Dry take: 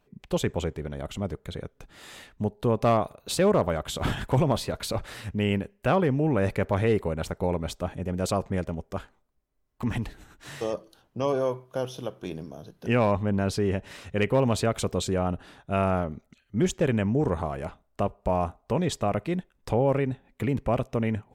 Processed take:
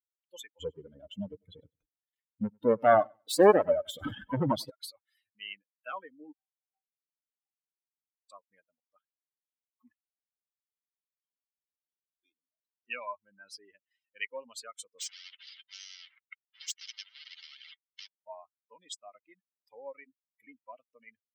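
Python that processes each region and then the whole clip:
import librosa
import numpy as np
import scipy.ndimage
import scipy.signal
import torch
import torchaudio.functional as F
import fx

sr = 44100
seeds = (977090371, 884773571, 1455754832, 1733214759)

y = fx.chain(x, sr, fx.tilt_shelf(db=9.5, hz=680.0),
    fx.leveller(passes=3),
    fx.echo_feedback(ms=97, feedback_pct=57, wet_db=-11), at=(0.6, 4.7))
y = fx.chain(y, sr, fx.lowpass(hz=1100.0, slope=24),
    fx.comb_fb(f0_hz=770.0, decay_s=0.23, harmonics='all', damping=0.0, mix_pct=100), at=(6.32, 8.3))
y = fx.chain(y, sr, fx.tone_stack(knobs='6-0-2'),
    fx.doubler(ms=17.0, db=-4.5), at=(9.92, 12.15))
y = fx.chain(y, sr, fx.leveller(passes=5),
    fx.air_absorb(metres=220.0),
    fx.spectral_comp(ratio=10.0), at=(14.99, 18.07))
y = fx.bin_expand(y, sr, power=3.0)
y = scipy.signal.sosfilt(scipy.signal.butter(2, 410.0, 'highpass', fs=sr, output='sos'), y)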